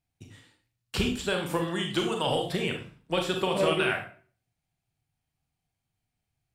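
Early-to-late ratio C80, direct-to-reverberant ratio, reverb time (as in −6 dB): 12.0 dB, 2.5 dB, 0.40 s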